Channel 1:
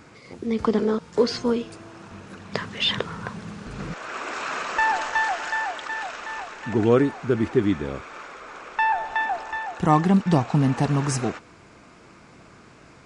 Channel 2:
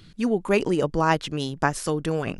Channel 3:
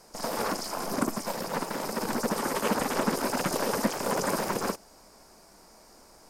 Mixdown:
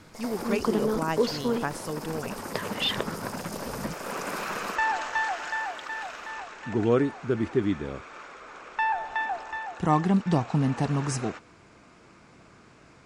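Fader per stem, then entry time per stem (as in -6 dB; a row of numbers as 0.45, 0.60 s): -4.5, -8.5, -7.5 dB; 0.00, 0.00, 0.00 s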